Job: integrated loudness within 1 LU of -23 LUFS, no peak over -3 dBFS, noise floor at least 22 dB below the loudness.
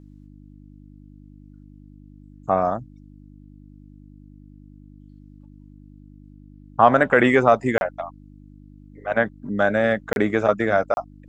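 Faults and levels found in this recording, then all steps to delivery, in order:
dropouts 3; longest dropout 31 ms; hum 50 Hz; harmonics up to 300 Hz; hum level -43 dBFS; loudness -20.5 LUFS; peak -1.5 dBFS; loudness target -23.0 LUFS
-> interpolate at 7.78/10.13/10.94, 31 ms; de-hum 50 Hz, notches 6; gain -2.5 dB

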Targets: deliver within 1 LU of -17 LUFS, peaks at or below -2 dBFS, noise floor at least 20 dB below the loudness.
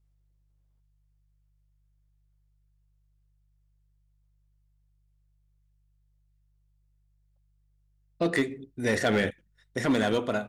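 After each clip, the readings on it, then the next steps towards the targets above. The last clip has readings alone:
clipped 0.3%; flat tops at -18.0 dBFS; hum 50 Hz; harmonics up to 150 Hz; hum level -65 dBFS; loudness -27.5 LUFS; peak -18.0 dBFS; loudness target -17.0 LUFS
-> clip repair -18 dBFS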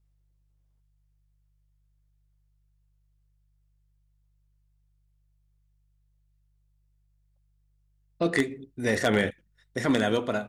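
clipped 0.0%; hum 50 Hz; harmonics up to 150 Hz; hum level -65 dBFS
-> de-hum 50 Hz, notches 3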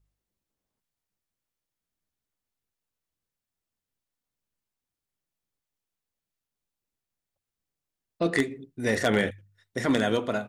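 hum none; loudness -27.0 LUFS; peak -9.0 dBFS; loudness target -17.0 LUFS
-> gain +10 dB; limiter -2 dBFS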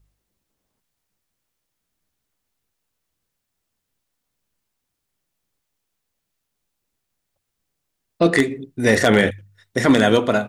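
loudness -17.5 LUFS; peak -2.0 dBFS; noise floor -79 dBFS

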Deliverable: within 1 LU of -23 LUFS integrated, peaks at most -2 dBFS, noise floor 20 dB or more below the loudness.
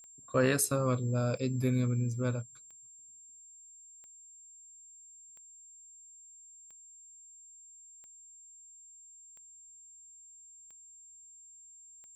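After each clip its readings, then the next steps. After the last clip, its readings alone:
clicks 10; steady tone 7400 Hz; tone level -52 dBFS; loudness -30.5 LUFS; peak -15.5 dBFS; loudness target -23.0 LUFS
-> de-click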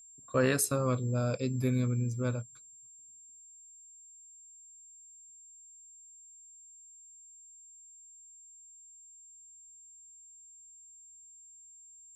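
clicks 0; steady tone 7400 Hz; tone level -52 dBFS
-> notch 7400 Hz, Q 30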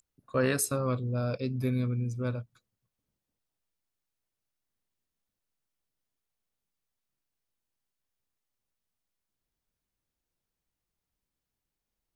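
steady tone none; loudness -31.0 LUFS; peak -15.5 dBFS; loudness target -23.0 LUFS
-> gain +8 dB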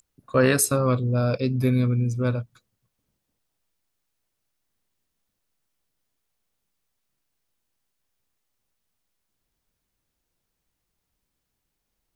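loudness -23.0 LUFS; peak -7.5 dBFS; noise floor -80 dBFS

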